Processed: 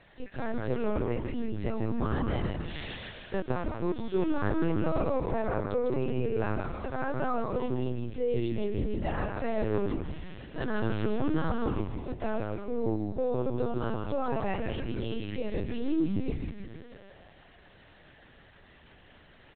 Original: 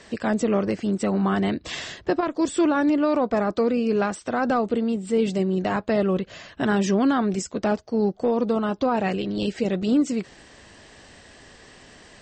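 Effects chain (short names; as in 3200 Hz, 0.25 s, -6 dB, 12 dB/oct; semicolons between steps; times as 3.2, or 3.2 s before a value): time stretch by phase-locked vocoder 1.6×; dynamic EQ 940 Hz, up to -3 dB, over -43 dBFS, Q 5.5; frequency shift +31 Hz; on a send: frequency-shifting echo 0.155 s, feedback 59%, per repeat -130 Hz, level -4 dB; on the sum: LPC vocoder at 8 kHz pitch kept; gain -8.5 dB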